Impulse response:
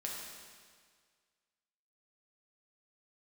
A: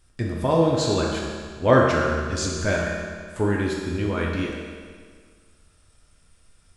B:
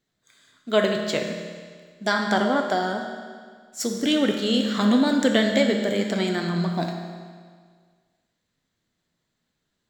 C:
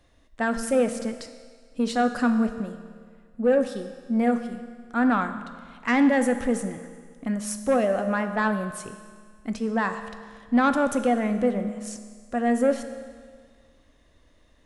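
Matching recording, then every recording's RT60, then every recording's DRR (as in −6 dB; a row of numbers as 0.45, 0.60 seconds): A; 1.8, 1.8, 1.8 seconds; −3.0, 2.5, 7.5 decibels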